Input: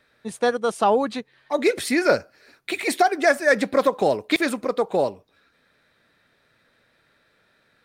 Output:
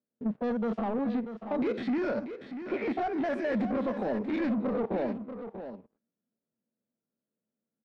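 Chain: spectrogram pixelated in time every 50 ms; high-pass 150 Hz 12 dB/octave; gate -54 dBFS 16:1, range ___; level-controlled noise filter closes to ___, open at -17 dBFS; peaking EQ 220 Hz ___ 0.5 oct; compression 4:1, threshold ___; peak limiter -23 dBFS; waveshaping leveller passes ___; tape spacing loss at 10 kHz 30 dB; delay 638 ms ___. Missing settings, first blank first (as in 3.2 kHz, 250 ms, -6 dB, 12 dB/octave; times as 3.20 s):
-18 dB, 640 Hz, +13.5 dB, -30 dBFS, 2, -10 dB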